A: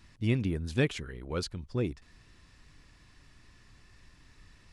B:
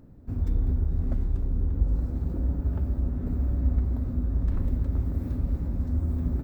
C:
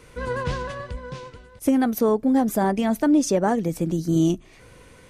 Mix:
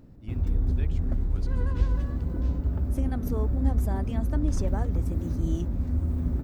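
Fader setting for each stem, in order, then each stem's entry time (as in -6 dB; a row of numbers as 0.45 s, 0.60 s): -17.0 dB, 0.0 dB, -14.5 dB; 0.00 s, 0.00 s, 1.30 s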